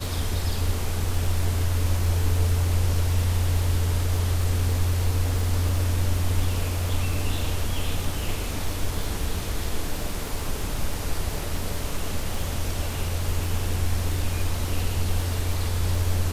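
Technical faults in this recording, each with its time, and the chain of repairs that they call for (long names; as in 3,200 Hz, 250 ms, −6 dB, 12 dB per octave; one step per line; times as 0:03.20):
surface crackle 50 per second −29 dBFS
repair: click removal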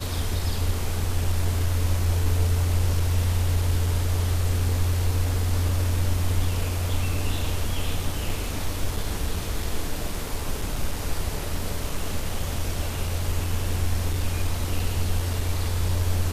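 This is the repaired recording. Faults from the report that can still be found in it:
none of them is left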